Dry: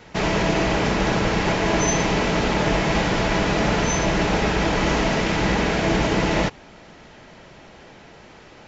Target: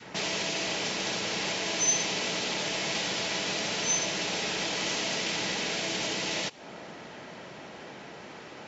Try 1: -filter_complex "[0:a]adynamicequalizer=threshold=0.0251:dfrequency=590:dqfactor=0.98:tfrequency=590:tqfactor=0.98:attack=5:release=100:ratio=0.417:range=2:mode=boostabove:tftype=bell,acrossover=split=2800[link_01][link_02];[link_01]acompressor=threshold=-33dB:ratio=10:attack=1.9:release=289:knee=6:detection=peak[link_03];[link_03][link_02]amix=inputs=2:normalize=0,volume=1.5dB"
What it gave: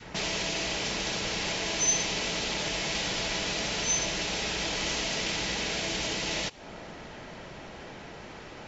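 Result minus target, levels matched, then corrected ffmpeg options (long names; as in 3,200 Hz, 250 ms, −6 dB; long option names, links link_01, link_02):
125 Hz band +3.0 dB
-filter_complex "[0:a]adynamicequalizer=threshold=0.0251:dfrequency=590:dqfactor=0.98:tfrequency=590:tqfactor=0.98:attack=5:release=100:ratio=0.417:range=2:mode=boostabove:tftype=bell,highpass=150,acrossover=split=2800[link_01][link_02];[link_01]acompressor=threshold=-33dB:ratio=10:attack=1.9:release=289:knee=6:detection=peak[link_03];[link_03][link_02]amix=inputs=2:normalize=0,volume=1.5dB"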